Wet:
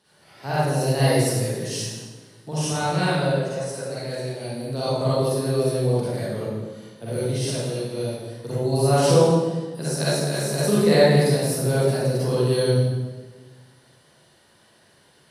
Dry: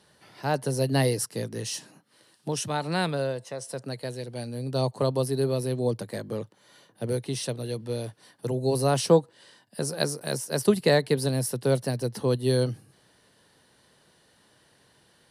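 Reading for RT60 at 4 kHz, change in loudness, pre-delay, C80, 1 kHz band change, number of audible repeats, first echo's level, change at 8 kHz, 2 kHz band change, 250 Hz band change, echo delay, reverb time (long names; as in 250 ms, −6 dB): 1.1 s, +5.0 dB, 38 ms, −1.5 dB, +5.5 dB, no echo audible, no echo audible, +4.0 dB, +5.0 dB, +5.0 dB, no echo audible, 1.3 s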